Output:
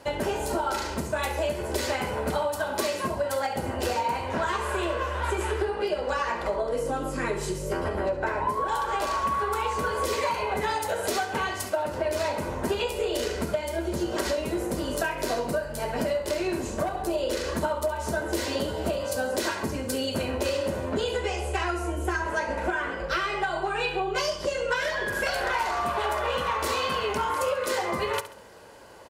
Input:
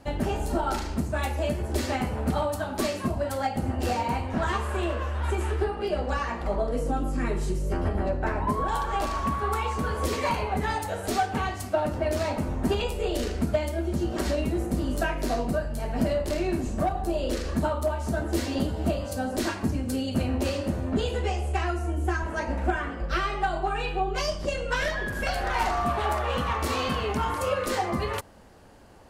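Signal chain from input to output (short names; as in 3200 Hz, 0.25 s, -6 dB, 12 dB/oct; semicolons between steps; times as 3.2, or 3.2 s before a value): HPF 380 Hz 6 dB/oct; comb 2 ms, depth 41%; compressor, threshold -30 dBFS, peak gain reduction 10 dB; feedback echo 68 ms, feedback 37%, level -13.5 dB; gain +6 dB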